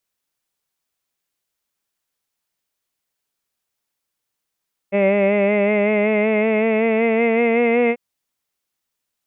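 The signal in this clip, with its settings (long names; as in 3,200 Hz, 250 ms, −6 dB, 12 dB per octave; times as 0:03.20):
vowel from formants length 3.04 s, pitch 196 Hz, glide +3.5 semitones, vibrato depth 0.45 semitones, F1 550 Hz, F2 2,100 Hz, F3 2,600 Hz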